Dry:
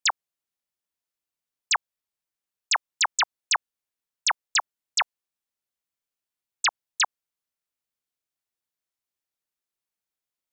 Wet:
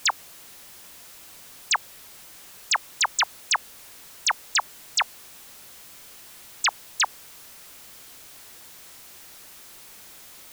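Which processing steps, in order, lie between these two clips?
converter with a step at zero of −38.5 dBFS

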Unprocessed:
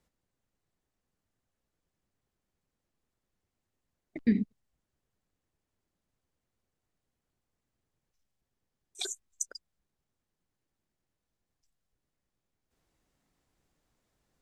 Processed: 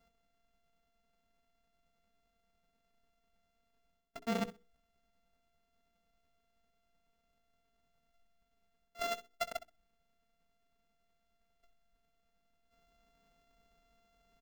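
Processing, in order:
samples sorted by size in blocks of 64 samples
comb filter 4.4 ms, depth 90%
reversed playback
downward compressor 5 to 1, threshold −37 dBFS, peak gain reduction 20 dB
reversed playback
mains-hum notches 60/120/180/240/300/360/420/480 Hz
in parallel at −3 dB: comparator with hysteresis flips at −42.5 dBFS
on the sum: flutter between parallel walls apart 10.9 metres, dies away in 0.25 s
level +2 dB

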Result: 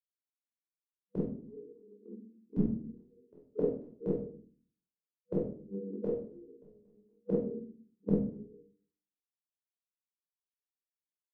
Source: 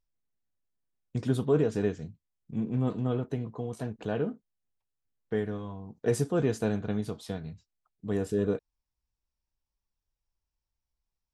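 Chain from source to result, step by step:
brick-wall band-pass 200–490 Hz
gate with flip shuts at −30 dBFS, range −34 dB
ambience of single reflections 26 ms −4 dB, 49 ms −7 dB
rectangular room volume 780 cubic metres, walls furnished, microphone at 5 metres
multiband upward and downward expander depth 70%
level +5 dB

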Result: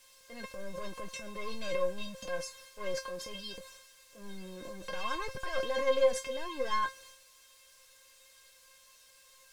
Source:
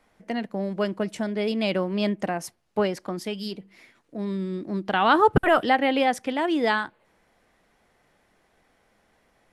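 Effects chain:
gain on a spectral selection 0:02.02–0:02.25, 270–2,600 Hz −17 dB
leveller curve on the samples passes 5
bit-depth reduction 6 bits, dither triangular
transient designer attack −10 dB, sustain +9 dB
tuned comb filter 530 Hz, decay 0.2 s, harmonics all, mix 100%
background noise violet −43 dBFS
high-frequency loss of the air 61 metres
level −6 dB

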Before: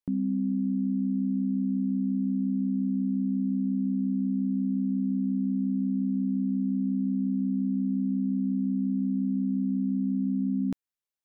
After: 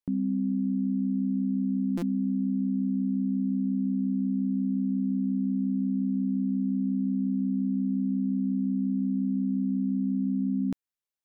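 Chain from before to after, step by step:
buffer that repeats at 0:01.97, samples 256, times 8

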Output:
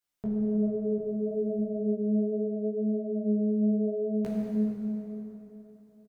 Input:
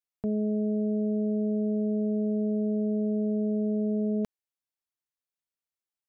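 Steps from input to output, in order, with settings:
0:00.98–0:01.59: spectral tilt +1.5 dB per octave
brickwall limiter −30 dBFS, peak gain reduction 7.5 dB
multi-voice chorus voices 2, 0.71 Hz, delay 19 ms, depth 4.2 ms
repeating echo 142 ms, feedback 51%, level −16 dB
dense smooth reverb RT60 3.6 s, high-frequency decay 0.65×, DRR −4.5 dB
level +8 dB

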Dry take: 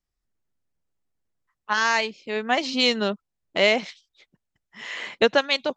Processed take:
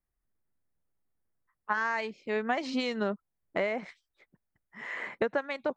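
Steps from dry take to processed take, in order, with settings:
downward compressor 12 to 1, threshold −23 dBFS, peak gain reduction 10.5 dB
flat-topped bell 4,400 Hz −15.5 dB, from 0:01.97 −8.5 dB, from 0:03.02 −15.5 dB
level −1.5 dB

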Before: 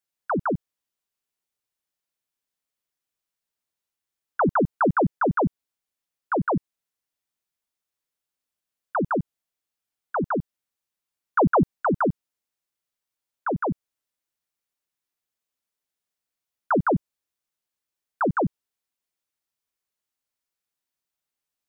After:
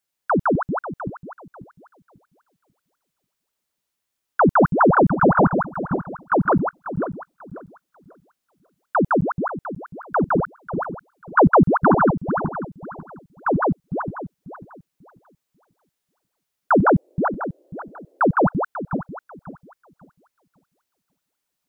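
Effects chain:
feedback delay that plays each chunk backwards 271 ms, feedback 48%, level −6 dB
0:16.85–0:18.32: noise in a band 300–620 Hz −64 dBFS
level +5.5 dB

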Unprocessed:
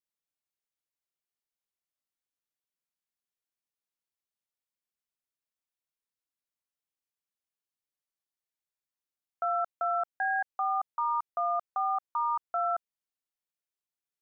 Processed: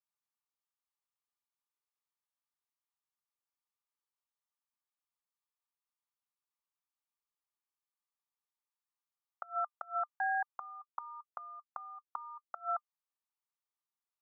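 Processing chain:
four-pole ladder high-pass 800 Hz, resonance 60%
hollow resonant body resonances 1,200 Hz, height 11 dB, ringing for 55 ms
gate with flip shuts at −29 dBFS, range −25 dB
level +3 dB

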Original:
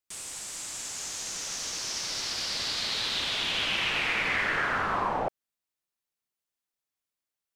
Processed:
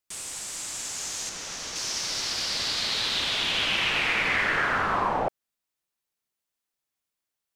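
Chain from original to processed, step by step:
0:01.29–0:01.76: high-shelf EQ 4,600 Hz −8 dB
level +3 dB

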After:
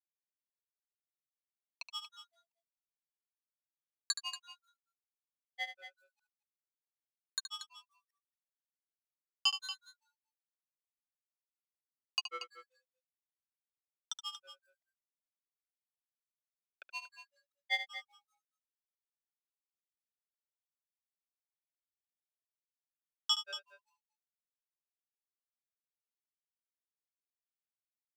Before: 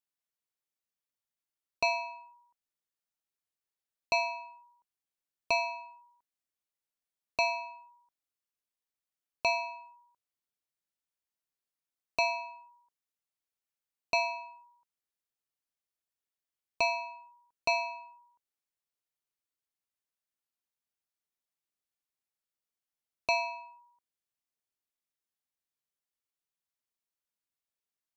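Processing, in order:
mu-law and A-law mismatch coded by A
high-pass filter 1,100 Hz 24 dB per octave
parametric band 5,000 Hz +7 dB 1.5 octaves
granular cloud, grains 5.2 per second, spray 15 ms, pitch spread up and down by 12 semitones
loudspeakers that aren't time-aligned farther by 25 metres −10 dB, 80 metres −12 dB

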